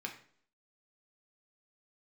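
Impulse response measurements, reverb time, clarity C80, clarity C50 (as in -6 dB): 0.55 s, 13.5 dB, 9.5 dB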